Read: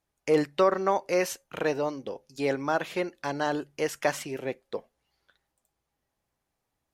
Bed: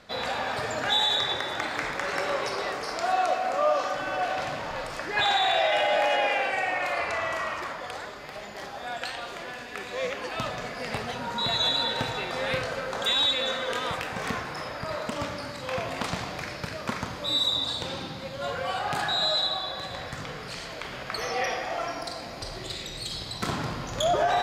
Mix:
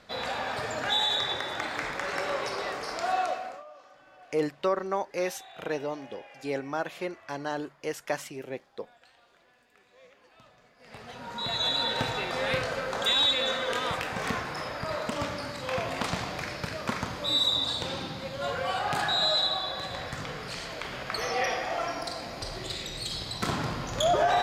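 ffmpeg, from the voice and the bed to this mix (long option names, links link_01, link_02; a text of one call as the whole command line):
ffmpeg -i stem1.wav -i stem2.wav -filter_complex "[0:a]adelay=4050,volume=-4.5dB[link_01];[1:a]volume=23dB,afade=type=out:start_time=3.17:duration=0.47:silence=0.0707946,afade=type=in:start_time=10.78:duration=1.25:silence=0.0530884[link_02];[link_01][link_02]amix=inputs=2:normalize=0" out.wav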